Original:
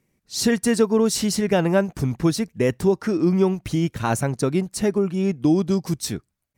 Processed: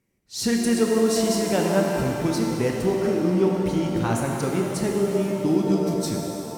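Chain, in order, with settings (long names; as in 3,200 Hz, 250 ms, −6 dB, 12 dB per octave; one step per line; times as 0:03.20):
reverb with rising layers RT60 3 s, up +7 semitones, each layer −8 dB, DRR 0 dB
level −5 dB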